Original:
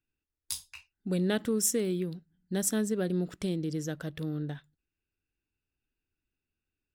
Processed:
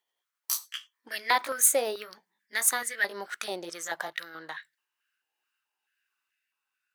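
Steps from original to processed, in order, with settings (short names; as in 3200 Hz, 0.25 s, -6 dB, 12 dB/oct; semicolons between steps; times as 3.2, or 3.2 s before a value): gliding pitch shift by +3.5 st ending unshifted; stepped high-pass 4.6 Hz 800–1800 Hz; gain +8 dB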